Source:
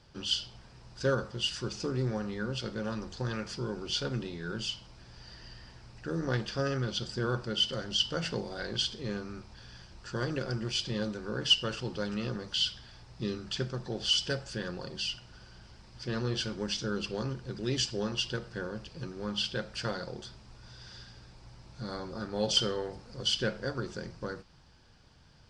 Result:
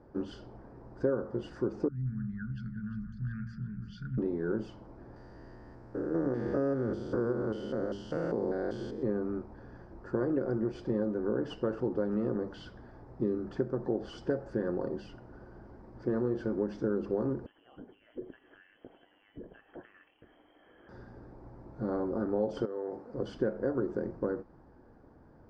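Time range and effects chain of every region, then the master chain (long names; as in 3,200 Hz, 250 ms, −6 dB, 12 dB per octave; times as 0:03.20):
0:01.88–0:04.18: spectral envelope exaggerated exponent 1.5 + elliptic band-stop filter 180–1,600 Hz + delay that swaps between a low-pass and a high-pass 175 ms, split 1,700 Hz, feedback 68%, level −9 dB
0:05.16–0:09.03: spectrum averaged block by block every 200 ms + high-shelf EQ 4,800 Hz +11.5 dB + mains-hum notches 50/100/150/200/250/300/350/400/450 Hz
0:17.46–0:20.89: downward compressor 5 to 1, threshold −46 dBFS + voice inversion scrambler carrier 3,200 Hz
0:22.65–0:23.14: high-pass filter 340 Hz 6 dB per octave + downward compressor 12 to 1, threshold −40 dBFS
whole clip: drawn EQ curve 160 Hz 0 dB, 290 Hz +13 dB, 750 Hz +6 dB, 1,800 Hz −5 dB, 2,900 Hz −25 dB; downward compressor 4 to 1, threshold −27 dBFS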